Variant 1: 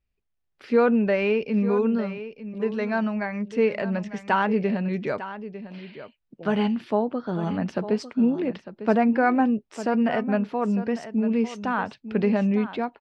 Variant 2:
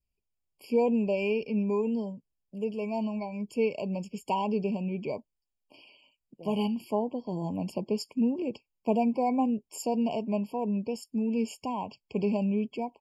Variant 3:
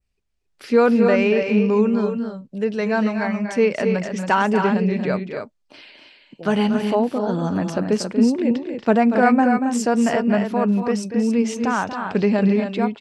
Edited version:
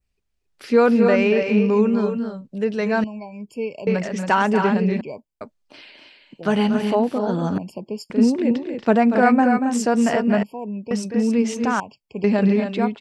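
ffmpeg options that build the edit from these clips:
-filter_complex "[1:a]asplit=5[s0][s1][s2][s3][s4];[2:a]asplit=6[s5][s6][s7][s8][s9][s10];[s5]atrim=end=3.042[s11];[s0]atrim=start=3.038:end=3.872[s12];[s6]atrim=start=3.868:end=5.012[s13];[s1]atrim=start=5.008:end=5.412[s14];[s7]atrim=start=5.408:end=7.582[s15];[s2]atrim=start=7.578:end=8.102[s16];[s8]atrim=start=8.098:end=10.432[s17];[s3]atrim=start=10.428:end=10.912[s18];[s9]atrim=start=10.908:end=11.802[s19];[s4]atrim=start=11.798:end=12.242[s20];[s10]atrim=start=12.238[s21];[s11][s12]acrossfade=d=0.004:c1=hsin:c2=hsin[s22];[s22][s13]acrossfade=d=0.004:c1=hsin:c2=hsin[s23];[s23][s14]acrossfade=d=0.004:c1=hsin:c2=hsin[s24];[s24][s15]acrossfade=d=0.004:c1=hsin:c2=hsin[s25];[s25][s16]acrossfade=d=0.004:c1=hsin:c2=hsin[s26];[s26][s17]acrossfade=d=0.004:c1=hsin:c2=hsin[s27];[s27][s18]acrossfade=d=0.004:c1=hsin:c2=hsin[s28];[s28][s19]acrossfade=d=0.004:c1=hsin:c2=hsin[s29];[s29][s20]acrossfade=d=0.004:c1=hsin:c2=hsin[s30];[s30][s21]acrossfade=d=0.004:c1=hsin:c2=hsin"

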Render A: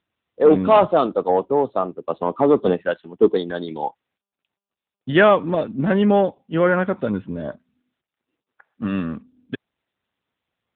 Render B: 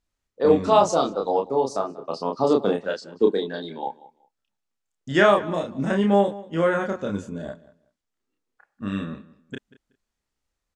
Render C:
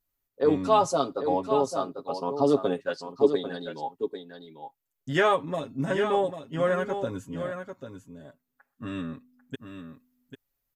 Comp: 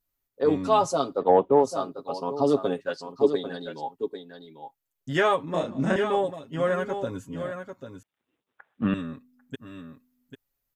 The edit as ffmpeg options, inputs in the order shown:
-filter_complex "[0:a]asplit=2[s0][s1];[2:a]asplit=4[s2][s3][s4][s5];[s2]atrim=end=1.25[s6];[s0]atrim=start=1.15:end=1.68[s7];[s3]atrim=start=1.58:end=5.542[s8];[1:a]atrim=start=5.538:end=5.962[s9];[s4]atrim=start=5.958:end=8.032[s10];[s1]atrim=start=8.028:end=8.942[s11];[s5]atrim=start=8.938[s12];[s6][s7]acrossfade=d=0.1:c1=tri:c2=tri[s13];[s13][s8]acrossfade=d=0.1:c1=tri:c2=tri[s14];[s14][s9]acrossfade=d=0.004:c1=hsin:c2=hsin[s15];[s15][s10]acrossfade=d=0.004:c1=hsin:c2=hsin[s16];[s16][s11]acrossfade=d=0.004:c1=hsin:c2=hsin[s17];[s17][s12]acrossfade=d=0.004:c1=hsin:c2=hsin"

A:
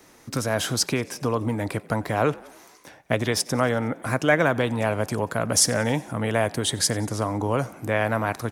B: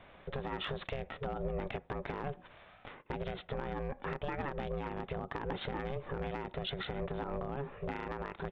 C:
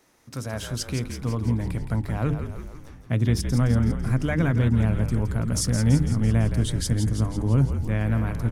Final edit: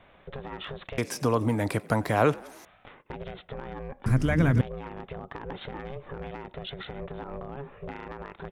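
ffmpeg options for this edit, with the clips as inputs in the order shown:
-filter_complex "[1:a]asplit=3[s0][s1][s2];[s0]atrim=end=0.982[s3];[0:a]atrim=start=0.978:end=2.652[s4];[s1]atrim=start=2.648:end=4.062[s5];[2:a]atrim=start=4.058:end=4.612[s6];[s2]atrim=start=4.608[s7];[s3][s4]acrossfade=d=0.004:c1=hsin:c2=hsin[s8];[s8][s5]acrossfade=d=0.004:c1=hsin:c2=hsin[s9];[s9][s6]acrossfade=d=0.004:c1=hsin:c2=hsin[s10];[s10][s7]acrossfade=d=0.004:c1=hsin:c2=hsin"

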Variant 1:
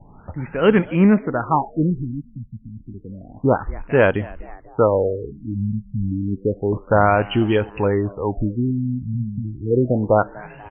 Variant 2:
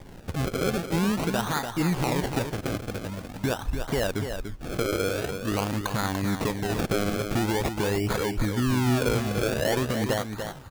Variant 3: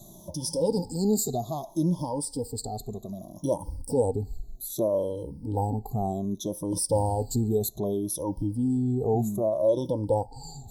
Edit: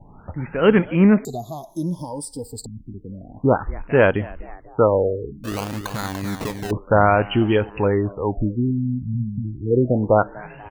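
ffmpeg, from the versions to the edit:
-filter_complex "[0:a]asplit=3[s0][s1][s2];[s0]atrim=end=1.252[s3];[2:a]atrim=start=1.248:end=2.662[s4];[s1]atrim=start=2.658:end=5.442[s5];[1:a]atrim=start=5.438:end=6.712[s6];[s2]atrim=start=6.708[s7];[s3][s4]acrossfade=d=0.004:c1=hsin:c2=hsin[s8];[s8][s5]acrossfade=d=0.004:c1=hsin:c2=hsin[s9];[s9][s6]acrossfade=d=0.004:c1=hsin:c2=hsin[s10];[s10][s7]acrossfade=d=0.004:c1=hsin:c2=hsin"

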